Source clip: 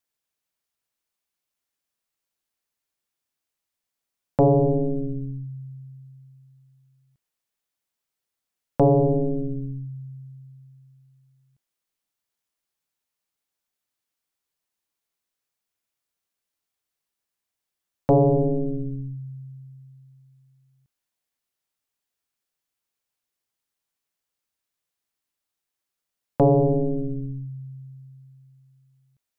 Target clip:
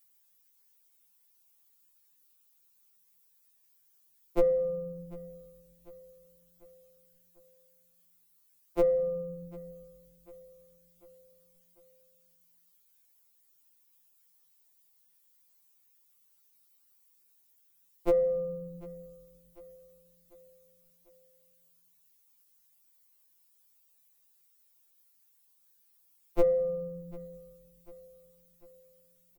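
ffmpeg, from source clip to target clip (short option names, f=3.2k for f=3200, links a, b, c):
-filter_complex "[0:a]acontrast=72,highpass=56,lowshelf=f=260:g=7,acrossover=split=190[a][b];[b]acompressor=threshold=-23dB:ratio=2[c];[a][c]amix=inputs=2:normalize=0,aemphasis=mode=production:type=50fm,afreqshift=-180,asplit=2[d][e];[e]aecho=0:1:746|1492|2238|2984:0.0891|0.0446|0.0223|0.0111[f];[d][f]amix=inputs=2:normalize=0,afftfilt=real='re*2.83*eq(mod(b,8),0)':imag='im*2.83*eq(mod(b,8),0)':win_size=2048:overlap=0.75,volume=-2.5dB"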